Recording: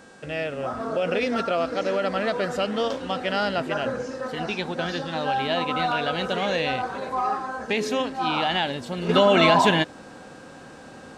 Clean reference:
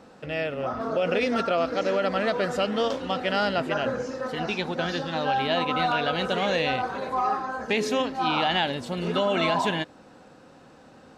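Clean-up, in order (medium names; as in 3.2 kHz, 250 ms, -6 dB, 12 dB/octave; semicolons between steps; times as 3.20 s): de-hum 378.5 Hz, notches 25; band-stop 1.6 kHz, Q 30; trim 0 dB, from 9.09 s -7 dB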